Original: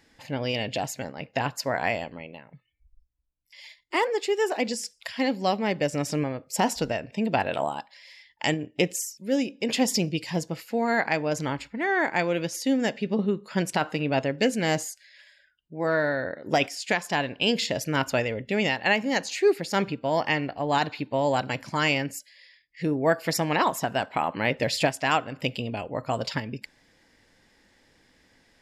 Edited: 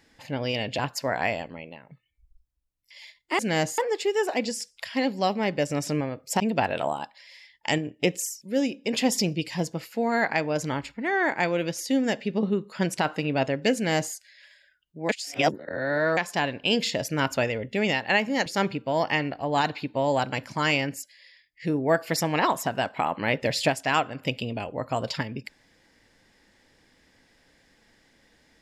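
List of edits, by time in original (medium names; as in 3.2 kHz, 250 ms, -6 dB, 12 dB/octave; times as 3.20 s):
0.79–1.41 s: delete
6.63–7.16 s: delete
14.51–14.90 s: copy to 4.01 s
15.85–16.93 s: reverse
19.22–19.63 s: delete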